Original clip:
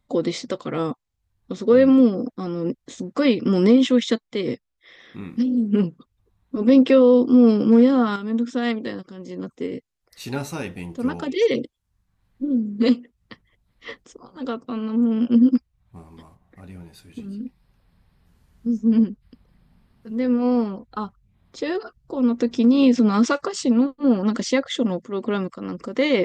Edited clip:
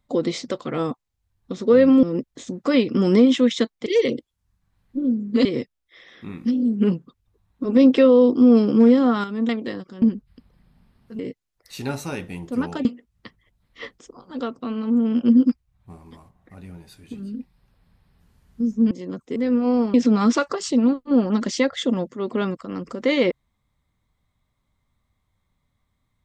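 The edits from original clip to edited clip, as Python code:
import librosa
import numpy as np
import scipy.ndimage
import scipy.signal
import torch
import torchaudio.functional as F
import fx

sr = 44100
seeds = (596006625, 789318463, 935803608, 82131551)

y = fx.edit(x, sr, fx.cut(start_s=2.03, length_s=0.51),
    fx.cut(start_s=8.41, length_s=0.27),
    fx.swap(start_s=9.21, length_s=0.45, other_s=18.97, other_length_s=1.17),
    fx.move(start_s=11.32, length_s=1.59, to_s=4.37),
    fx.cut(start_s=20.72, length_s=2.15), tone=tone)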